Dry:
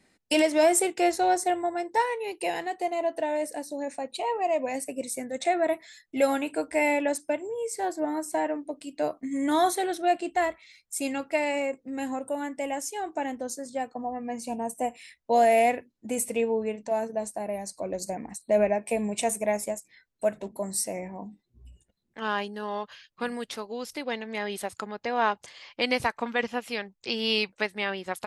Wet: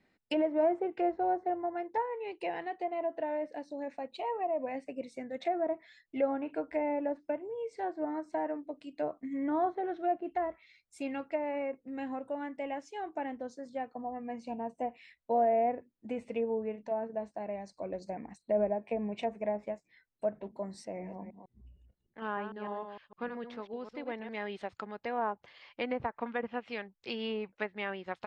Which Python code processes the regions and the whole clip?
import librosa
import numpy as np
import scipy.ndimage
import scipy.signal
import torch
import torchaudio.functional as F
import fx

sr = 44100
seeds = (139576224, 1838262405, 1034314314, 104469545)

y = fx.chain(x, sr, fx.reverse_delay(ms=152, wet_db=-7.5),
    fx.high_shelf(hz=3000.0, db=-11.5), at=(20.85, 24.29))
y = scipy.signal.sosfilt(scipy.signal.butter(2, 3300.0, 'lowpass', fs=sr, output='sos'), y)
y = fx.env_lowpass_down(y, sr, base_hz=1000.0, full_db=-22.0)
y = F.gain(torch.from_numpy(y), -6.0).numpy()